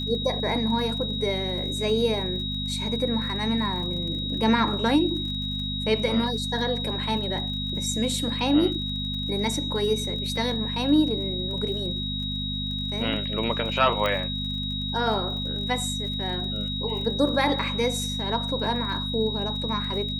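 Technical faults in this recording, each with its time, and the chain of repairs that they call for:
surface crackle 36 per second −35 dBFS
mains hum 50 Hz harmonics 5 −32 dBFS
whistle 3,800 Hz −30 dBFS
0:14.06: click −13 dBFS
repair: click removal
hum removal 50 Hz, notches 5
notch filter 3,800 Hz, Q 30

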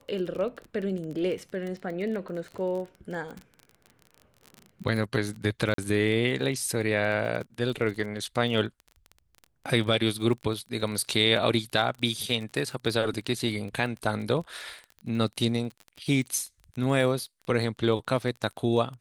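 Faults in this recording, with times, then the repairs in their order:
surface crackle 27 per second −34 dBFS
0:05.74–0:05.78: drop-out 43 ms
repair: click removal
repair the gap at 0:05.74, 43 ms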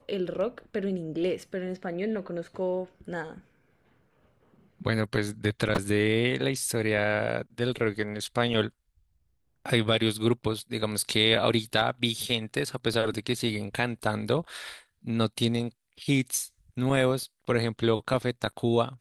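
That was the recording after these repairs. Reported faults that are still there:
none of them is left

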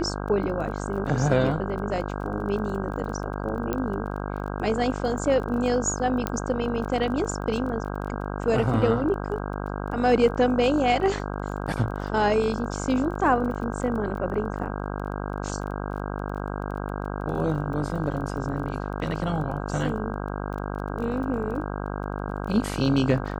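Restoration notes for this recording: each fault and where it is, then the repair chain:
mains buzz 50 Hz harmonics 32 −31 dBFS
surface crackle 20 per second −35 dBFS
0:03.73: click −13 dBFS
0:06.27: click −11 dBFS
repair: click removal
hum removal 50 Hz, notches 32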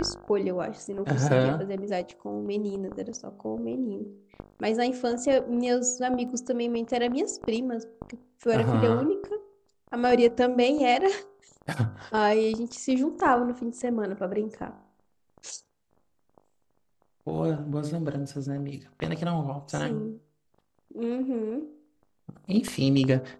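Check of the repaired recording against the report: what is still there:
0:06.27: click

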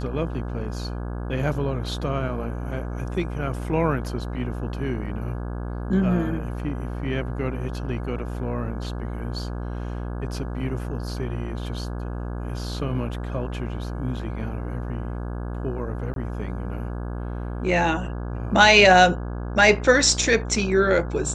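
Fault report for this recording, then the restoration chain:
mains buzz 60 Hz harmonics 28 −30 dBFS
0:16.14–0:16.16: drop-out 22 ms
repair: hum removal 60 Hz, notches 28
repair the gap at 0:16.14, 22 ms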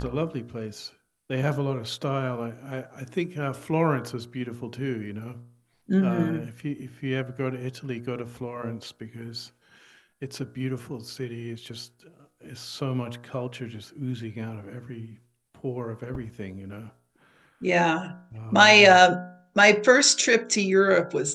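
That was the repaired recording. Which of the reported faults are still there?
none of them is left

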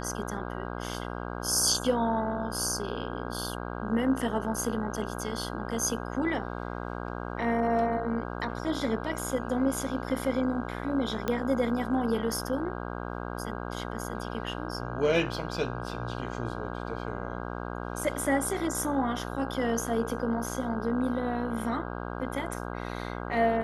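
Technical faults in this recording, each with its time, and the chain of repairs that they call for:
mains buzz 60 Hz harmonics 27 −36 dBFS
0:11.28: click −15 dBFS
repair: click removal
hum removal 60 Hz, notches 27

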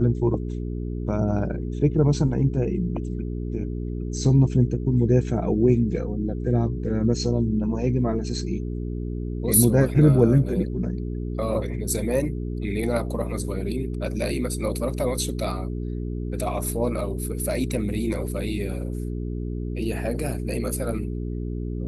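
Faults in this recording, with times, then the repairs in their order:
mains hum 60 Hz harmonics 7 −29 dBFS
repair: hum removal 60 Hz, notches 7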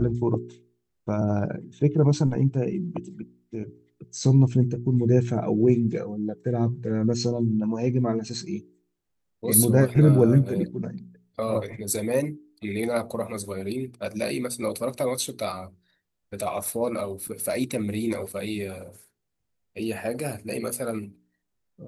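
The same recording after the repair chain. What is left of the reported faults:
none of them is left

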